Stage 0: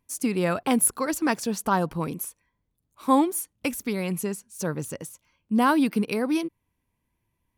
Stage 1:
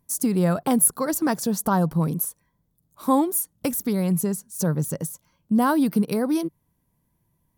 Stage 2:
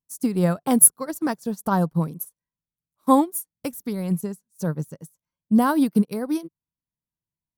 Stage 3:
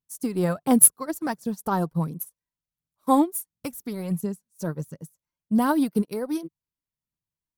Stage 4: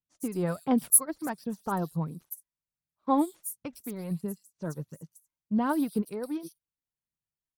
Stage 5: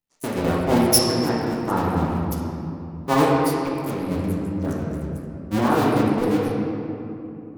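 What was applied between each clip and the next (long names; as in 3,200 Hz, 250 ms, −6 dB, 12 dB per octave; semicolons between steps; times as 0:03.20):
graphic EQ with 15 bands 160 Hz +10 dB, 630 Hz +3 dB, 2,500 Hz −10 dB, 16,000 Hz +12 dB; in parallel at +2.5 dB: downward compressor, threshold −26 dBFS, peak gain reduction 13 dB; on the sum: level −4 dB
expander for the loud parts 2.5 to 1, over −36 dBFS; level +7 dB
phase shifter 1.4 Hz, delay 3.3 ms, feedback 39%; level −2.5 dB
multiband delay without the direct sound lows, highs 110 ms, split 4,200 Hz; pitch vibrato 1.4 Hz 32 cents; level −5.5 dB
sub-harmonics by changed cycles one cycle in 2, muted; convolution reverb RT60 2.9 s, pre-delay 6 ms, DRR −6 dB; level +5.5 dB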